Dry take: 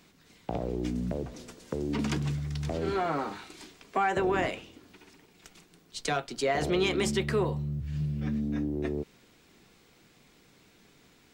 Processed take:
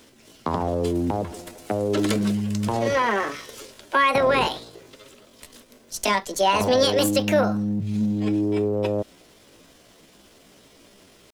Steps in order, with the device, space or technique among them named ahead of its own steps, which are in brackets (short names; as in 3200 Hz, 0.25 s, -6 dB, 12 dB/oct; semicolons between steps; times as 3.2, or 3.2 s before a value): chipmunk voice (pitch shift +6 st); gain +8 dB